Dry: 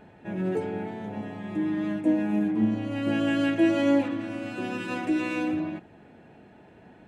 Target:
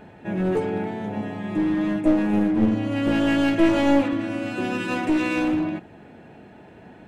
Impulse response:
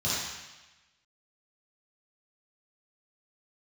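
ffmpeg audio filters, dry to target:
-af "aeval=exprs='clip(val(0),-1,0.0531)':c=same,volume=6dB"

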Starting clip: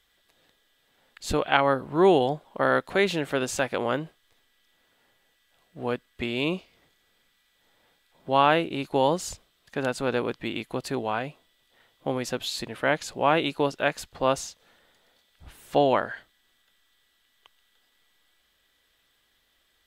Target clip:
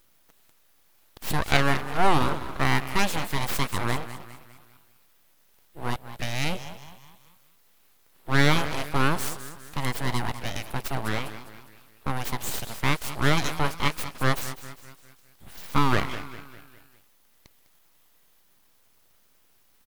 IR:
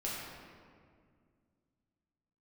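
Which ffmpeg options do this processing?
-filter_complex "[0:a]asplit=6[a][b][c][d][e][f];[b]adelay=202,afreqshift=46,volume=-13dB[g];[c]adelay=404,afreqshift=92,volume=-19.6dB[h];[d]adelay=606,afreqshift=138,volume=-26.1dB[i];[e]adelay=808,afreqshift=184,volume=-32.7dB[j];[f]adelay=1010,afreqshift=230,volume=-39.2dB[k];[a][g][h][i][j][k]amix=inputs=6:normalize=0,aexciter=amount=4.4:drive=6.4:freq=8.8k,aeval=exprs='abs(val(0))':c=same,volume=2dB"

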